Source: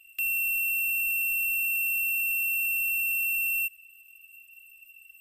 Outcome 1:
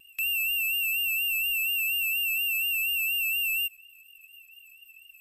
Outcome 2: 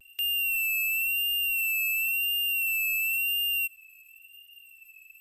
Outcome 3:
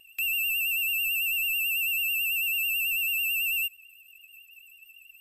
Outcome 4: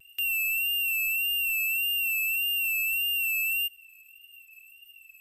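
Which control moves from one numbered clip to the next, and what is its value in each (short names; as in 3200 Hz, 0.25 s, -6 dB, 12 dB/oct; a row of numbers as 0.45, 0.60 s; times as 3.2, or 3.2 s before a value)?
vibrato, rate: 4.2, 0.95, 9.1, 1.7 Hz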